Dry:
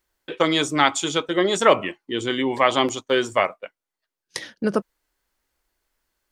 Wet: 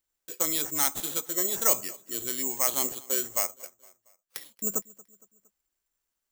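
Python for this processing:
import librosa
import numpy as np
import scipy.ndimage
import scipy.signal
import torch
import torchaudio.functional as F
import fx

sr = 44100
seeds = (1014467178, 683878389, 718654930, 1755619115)

y = fx.spec_box(x, sr, start_s=4.43, length_s=0.26, low_hz=1300.0, high_hz=2700.0, gain_db=-25)
y = fx.echo_feedback(y, sr, ms=231, feedback_pct=49, wet_db=-22.5)
y = (np.kron(y[::6], np.eye(6)[0]) * 6)[:len(y)]
y = y * librosa.db_to_amplitude(-15.5)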